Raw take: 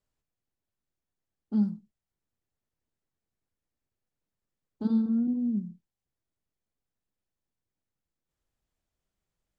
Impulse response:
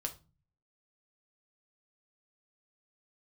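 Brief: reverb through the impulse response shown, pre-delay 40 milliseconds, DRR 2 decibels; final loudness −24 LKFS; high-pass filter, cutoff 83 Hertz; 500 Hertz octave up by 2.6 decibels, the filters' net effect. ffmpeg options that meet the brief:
-filter_complex "[0:a]highpass=83,equalizer=frequency=500:width_type=o:gain=3,asplit=2[link_01][link_02];[1:a]atrim=start_sample=2205,adelay=40[link_03];[link_02][link_03]afir=irnorm=-1:irlink=0,volume=-2dB[link_04];[link_01][link_04]amix=inputs=2:normalize=0,volume=3dB"

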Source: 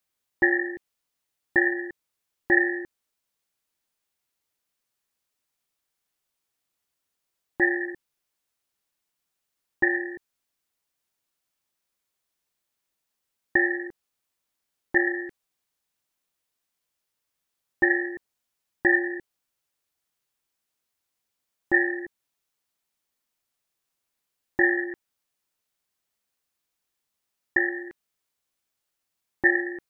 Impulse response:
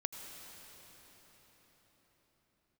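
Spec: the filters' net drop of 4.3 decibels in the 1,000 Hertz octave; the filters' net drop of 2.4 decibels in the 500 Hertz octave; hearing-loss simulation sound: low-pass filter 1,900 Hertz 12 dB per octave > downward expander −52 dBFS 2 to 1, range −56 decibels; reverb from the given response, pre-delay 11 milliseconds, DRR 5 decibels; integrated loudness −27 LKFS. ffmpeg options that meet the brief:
-filter_complex "[0:a]equalizer=frequency=500:width_type=o:gain=-4,equalizer=frequency=1000:width_type=o:gain=-4,asplit=2[link_01][link_02];[1:a]atrim=start_sample=2205,adelay=11[link_03];[link_02][link_03]afir=irnorm=-1:irlink=0,volume=-5dB[link_04];[link_01][link_04]amix=inputs=2:normalize=0,lowpass=1900,agate=range=-56dB:threshold=-52dB:ratio=2,volume=1dB"

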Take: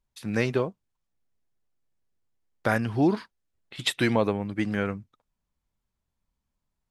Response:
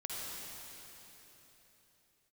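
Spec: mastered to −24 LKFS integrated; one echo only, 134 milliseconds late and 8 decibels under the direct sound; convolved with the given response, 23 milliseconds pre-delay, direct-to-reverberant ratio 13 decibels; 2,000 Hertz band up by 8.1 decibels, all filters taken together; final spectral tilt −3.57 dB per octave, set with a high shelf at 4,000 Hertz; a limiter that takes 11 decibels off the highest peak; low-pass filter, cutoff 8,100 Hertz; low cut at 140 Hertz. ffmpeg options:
-filter_complex "[0:a]highpass=140,lowpass=8100,equalizer=frequency=2000:width_type=o:gain=8.5,highshelf=frequency=4000:gain=7.5,alimiter=limit=-17.5dB:level=0:latency=1,aecho=1:1:134:0.398,asplit=2[link_01][link_02];[1:a]atrim=start_sample=2205,adelay=23[link_03];[link_02][link_03]afir=irnorm=-1:irlink=0,volume=-15dB[link_04];[link_01][link_04]amix=inputs=2:normalize=0,volume=6dB"

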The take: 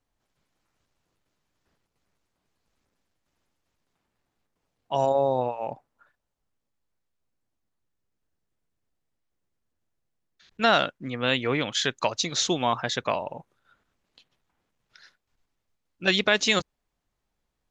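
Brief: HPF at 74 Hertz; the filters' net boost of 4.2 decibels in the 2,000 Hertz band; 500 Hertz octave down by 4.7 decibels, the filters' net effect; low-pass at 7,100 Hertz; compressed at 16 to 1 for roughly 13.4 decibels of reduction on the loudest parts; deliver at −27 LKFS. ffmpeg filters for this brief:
ffmpeg -i in.wav -af "highpass=74,lowpass=7100,equalizer=frequency=500:width_type=o:gain=-6.5,equalizer=frequency=2000:width_type=o:gain=6,acompressor=threshold=-27dB:ratio=16,volume=5.5dB" out.wav

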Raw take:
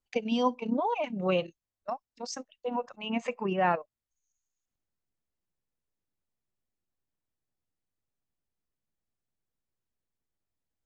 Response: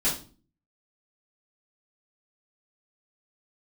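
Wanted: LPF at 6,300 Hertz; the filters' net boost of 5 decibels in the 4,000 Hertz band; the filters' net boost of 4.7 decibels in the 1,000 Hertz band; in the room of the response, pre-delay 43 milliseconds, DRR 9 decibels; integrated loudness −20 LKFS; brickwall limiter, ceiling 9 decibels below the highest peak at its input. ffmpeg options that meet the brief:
-filter_complex "[0:a]lowpass=6300,equalizer=frequency=1000:width_type=o:gain=5.5,equalizer=frequency=4000:width_type=o:gain=8,alimiter=limit=-19dB:level=0:latency=1,asplit=2[link_01][link_02];[1:a]atrim=start_sample=2205,adelay=43[link_03];[link_02][link_03]afir=irnorm=-1:irlink=0,volume=-19dB[link_04];[link_01][link_04]amix=inputs=2:normalize=0,volume=10.5dB"

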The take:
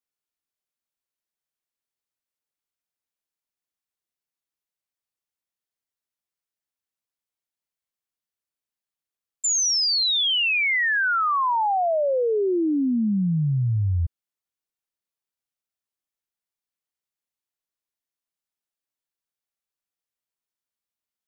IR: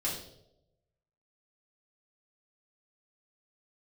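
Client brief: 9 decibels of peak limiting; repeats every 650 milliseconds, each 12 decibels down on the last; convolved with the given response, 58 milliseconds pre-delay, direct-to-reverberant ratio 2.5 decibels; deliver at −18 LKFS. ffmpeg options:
-filter_complex "[0:a]alimiter=level_in=3.5dB:limit=-24dB:level=0:latency=1,volume=-3.5dB,aecho=1:1:650|1300|1950:0.251|0.0628|0.0157,asplit=2[link_01][link_02];[1:a]atrim=start_sample=2205,adelay=58[link_03];[link_02][link_03]afir=irnorm=-1:irlink=0,volume=-7.5dB[link_04];[link_01][link_04]amix=inputs=2:normalize=0,volume=9.5dB"

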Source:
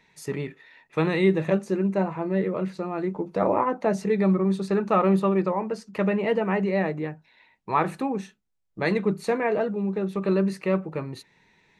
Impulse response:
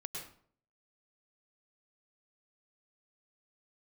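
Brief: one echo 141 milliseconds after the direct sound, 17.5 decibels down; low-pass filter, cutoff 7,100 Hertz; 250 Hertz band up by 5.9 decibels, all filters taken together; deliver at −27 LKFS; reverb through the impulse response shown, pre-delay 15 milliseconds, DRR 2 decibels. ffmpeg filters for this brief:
-filter_complex "[0:a]lowpass=7100,equalizer=frequency=250:width_type=o:gain=9,aecho=1:1:141:0.133,asplit=2[link_01][link_02];[1:a]atrim=start_sample=2205,adelay=15[link_03];[link_02][link_03]afir=irnorm=-1:irlink=0,volume=-1dB[link_04];[link_01][link_04]amix=inputs=2:normalize=0,volume=-9dB"

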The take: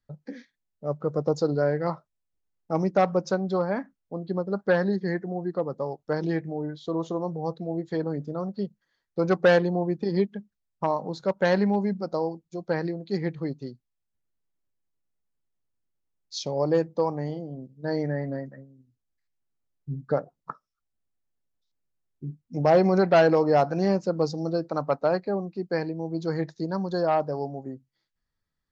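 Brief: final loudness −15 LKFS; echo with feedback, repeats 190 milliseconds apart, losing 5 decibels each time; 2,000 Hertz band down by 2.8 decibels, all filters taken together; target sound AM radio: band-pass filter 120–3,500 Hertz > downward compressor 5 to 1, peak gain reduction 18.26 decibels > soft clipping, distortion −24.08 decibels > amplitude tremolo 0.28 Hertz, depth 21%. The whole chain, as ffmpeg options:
ffmpeg -i in.wav -af "highpass=120,lowpass=3500,equalizer=frequency=2000:width_type=o:gain=-3.5,aecho=1:1:190|380|570|760|950|1140|1330:0.562|0.315|0.176|0.0988|0.0553|0.031|0.0173,acompressor=threshold=-34dB:ratio=5,asoftclip=threshold=-25dB,tremolo=f=0.28:d=0.21,volume=24.5dB" out.wav

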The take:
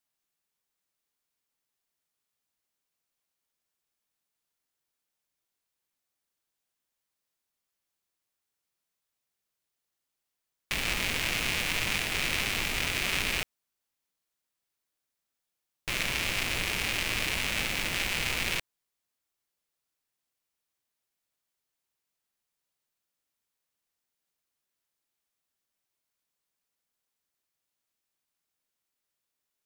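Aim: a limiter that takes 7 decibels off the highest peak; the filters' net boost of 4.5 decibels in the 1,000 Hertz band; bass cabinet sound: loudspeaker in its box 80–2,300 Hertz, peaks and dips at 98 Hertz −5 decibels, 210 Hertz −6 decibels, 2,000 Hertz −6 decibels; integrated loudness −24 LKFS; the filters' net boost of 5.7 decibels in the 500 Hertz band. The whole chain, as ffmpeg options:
ffmpeg -i in.wav -af "equalizer=frequency=500:width_type=o:gain=6,equalizer=frequency=1000:width_type=o:gain=4.5,alimiter=limit=-17.5dB:level=0:latency=1,highpass=frequency=80:width=0.5412,highpass=frequency=80:width=1.3066,equalizer=frequency=98:width_type=q:width=4:gain=-5,equalizer=frequency=210:width_type=q:width=4:gain=-6,equalizer=frequency=2000:width_type=q:width=4:gain=-6,lowpass=frequency=2300:width=0.5412,lowpass=frequency=2300:width=1.3066,volume=13dB" out.wav

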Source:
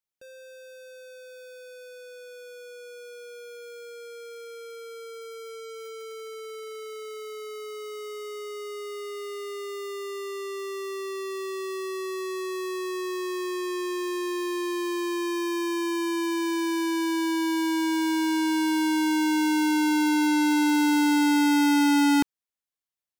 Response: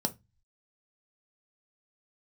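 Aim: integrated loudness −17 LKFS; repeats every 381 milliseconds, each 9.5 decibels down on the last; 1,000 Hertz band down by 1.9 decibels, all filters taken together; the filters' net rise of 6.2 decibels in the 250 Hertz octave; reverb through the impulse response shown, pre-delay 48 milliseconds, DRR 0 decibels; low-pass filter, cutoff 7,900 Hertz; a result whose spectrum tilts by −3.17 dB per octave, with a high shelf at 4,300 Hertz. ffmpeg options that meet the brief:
-filter_complex "[0:a]lowpass=7900,equalizer=frequency=250:width_type=o:gain=8.5,equalizer=frequency=1000:width_type=o:gain=-3,highshelf=frequency=4300:gain=8.5,aecho=1:1:381|762|1143|1524:0.335|0.111|0.0365|0.012,asplit=2[link_01][link_02];[1:a]atrim=start_sample=2205,adelay=48[link_03];[link_02][link_03]afir=irnorm=-1:irlink=0,volume=-4.5dB[link_04];[link_01][link_04]amix=inputs=2:normalize=0,volume=-5dB"

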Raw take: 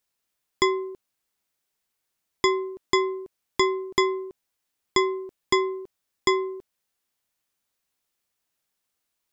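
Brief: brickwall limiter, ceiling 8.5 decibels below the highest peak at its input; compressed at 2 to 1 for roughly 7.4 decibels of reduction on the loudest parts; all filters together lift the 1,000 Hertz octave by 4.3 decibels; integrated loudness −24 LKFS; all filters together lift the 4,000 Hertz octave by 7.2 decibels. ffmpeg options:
ffmpeg -i in.wav -af "equalizer=frequency=1000:width_type=o:gain=4,equalizer=frequency=4000:width_type=o:gain=9,acompressor=threshold=-27dB:ratio=2,volume=8.5dB,alimiter=limit=-7dB:level=0:latency=1" out.wav

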